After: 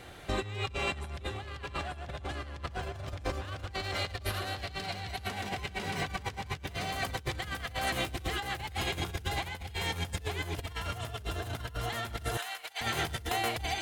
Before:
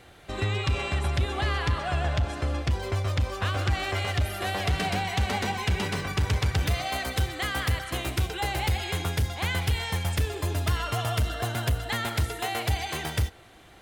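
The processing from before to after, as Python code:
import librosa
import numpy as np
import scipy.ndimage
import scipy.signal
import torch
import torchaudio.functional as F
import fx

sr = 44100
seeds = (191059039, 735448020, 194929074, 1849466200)

p1 = x + 10.0 ** (-3.5 / 20.0) * np.pad(x, (int(889 * sr / 1000.0), 0))[:len(x)]
p2 = np.clip(10.0 ** (28.5 / 20.0) * p1, -1.0, 1.0) / 10.0 ** (28.5 / 20.0)
p3 = p1 + F.gain(torch.from_numpy(p2), -3.0).numpy()
p4 = fx.over_compress(p3, sr, threshold_db=-28.0, ratio=-0.5)
p5 = fx.peak_eq(p4, sr, hz=4300.0, db=8.0, octaves=0.34, at=(3.73, 5.27))
p6 = fx.highpass(p5, sr, hz=980.0, slope=12, at=(12.37, 12.81))
y = F.gain(torch.from_numpy(p6), -7.0).numpy()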